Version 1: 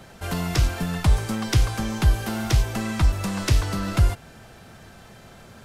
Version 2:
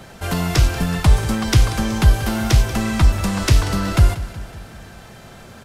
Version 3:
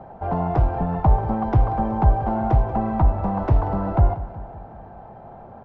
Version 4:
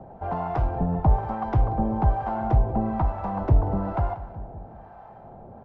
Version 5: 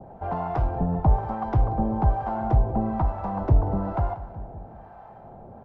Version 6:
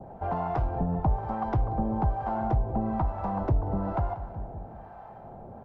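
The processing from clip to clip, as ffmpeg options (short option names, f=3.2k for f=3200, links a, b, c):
-af "aecho=1:1:186|372|558|744|930:0.178|0.0996|0.0558|0.0312|0.0175,volume=5.5dB"
-af "lowpass=f=810:t=q:w=4.1,volume=-4dB"
-filter_complex "[0:a]acrossover=split=680[a][b];[a]aeval=exprs='val(0)*(1-0.7/2+0.7/2*cos(2*PI*1.1*n/s))':c=same[c];[b]aeval=exprs='val(0)*(1-0.7/2-0.7/2*cos(2*PI*1.1*n/s))':c=same[d];[c][d]amix=inputs=2:normalize=0"
-af "adynamicequalizer=threshold=0.00355:dfrequency=2400:dqfactor=1:tfrequency=2400:tqfactor=1:attack=5:release=100:ratio=0.375:range=1.5:mode=cutabove:tftype=bell"
-af "acompressor=threshold=-26dB:ratio=2"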